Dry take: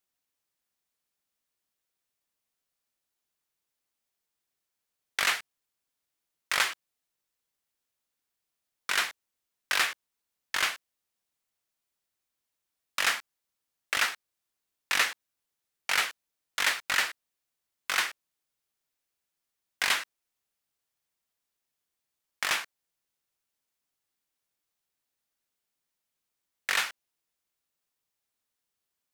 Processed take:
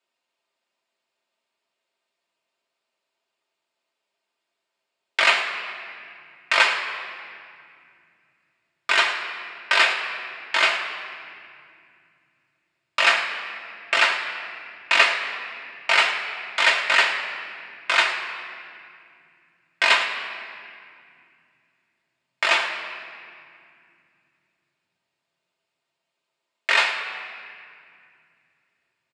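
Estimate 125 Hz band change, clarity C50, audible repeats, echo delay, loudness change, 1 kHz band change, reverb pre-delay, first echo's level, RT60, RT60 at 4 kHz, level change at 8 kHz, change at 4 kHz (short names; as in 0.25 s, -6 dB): n/a, 6.0 dB, 1, 0.107 s, +7.5 dB, +10.5 dB, 3 ms, -13.5 dB, 2.4 s, 1.7 s, -1.5 dB, +8.0 dB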